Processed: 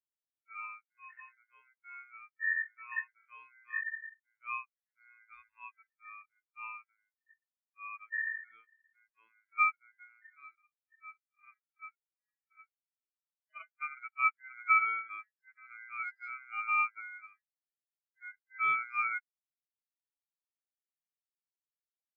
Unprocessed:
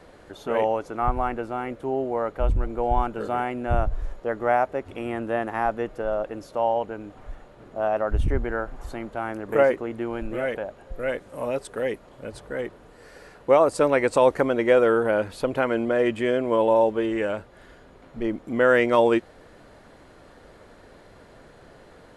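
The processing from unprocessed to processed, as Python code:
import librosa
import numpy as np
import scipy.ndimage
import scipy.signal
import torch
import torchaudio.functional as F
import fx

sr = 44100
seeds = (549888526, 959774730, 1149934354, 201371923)

y = fx.hpss_only(x, sr, part='harmonic')
y = fx.high_shelf_res(y, sr, hz=2400.0, db=9.0, q=1.5)
y = y * np.sin(2.0 * np.pi * 1800.0 * np.arange(len(y)) / sr)
y = fx.spectral_expand(y, sr, expansion=2.5)
y = y * librosa.db_to_amplitude(-6.5)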